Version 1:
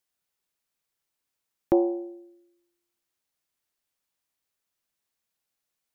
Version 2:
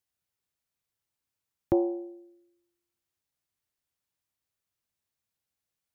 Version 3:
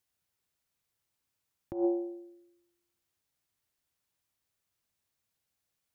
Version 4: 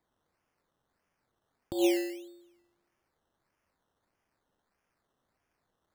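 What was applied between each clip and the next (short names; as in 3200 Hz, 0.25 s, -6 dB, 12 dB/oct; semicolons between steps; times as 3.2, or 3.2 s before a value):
bell 91 Hz +11 dB 1.6 oct; gain -4.5 dB
negative-ratio compressor -28 dBFS, ratio -0.5
decimation with a swept rate 15×, swing 60% 1.6 Hz; gain +3 dB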